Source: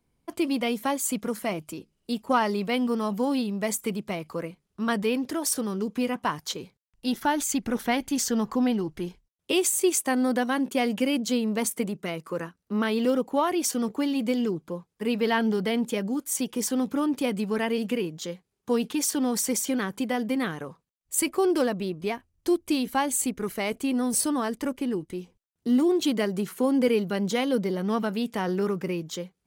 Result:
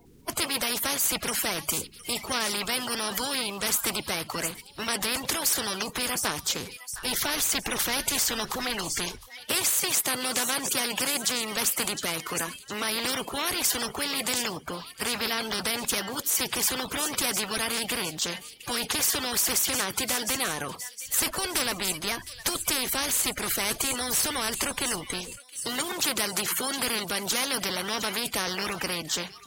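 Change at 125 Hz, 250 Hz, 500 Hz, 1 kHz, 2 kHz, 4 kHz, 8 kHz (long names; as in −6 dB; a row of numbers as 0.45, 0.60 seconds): −5.0, −11.5, −7.5, −2.0, +4.0, +8.5, +5.0 decibels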